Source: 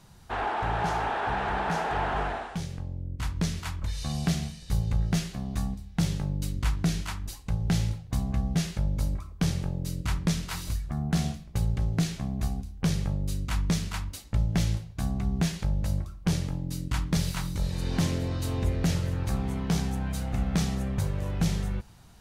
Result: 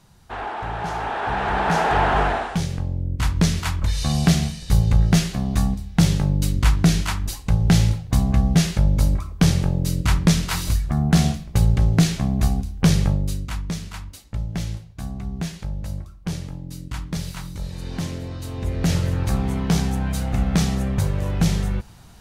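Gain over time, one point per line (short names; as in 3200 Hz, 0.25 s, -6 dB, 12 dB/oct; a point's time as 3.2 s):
0.8 s 0 dB
1.86 s +10 dB
13.08 s +10 dB
13.63 s -1.5 dB
18.53 s -1.5 dB
18.95 s +7 dB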